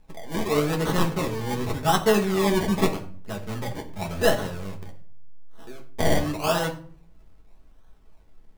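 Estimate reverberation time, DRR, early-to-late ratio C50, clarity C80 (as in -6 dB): 0.50 s, 0.5 dB, 11.5 dB, 16.0 dB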